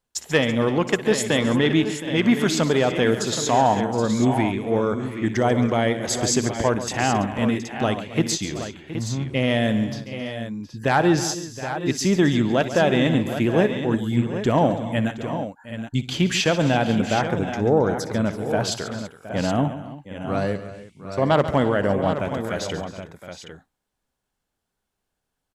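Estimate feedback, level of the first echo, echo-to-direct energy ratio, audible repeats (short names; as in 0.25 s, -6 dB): no steady repeat, -16.5 dB, -6.5 dB, 6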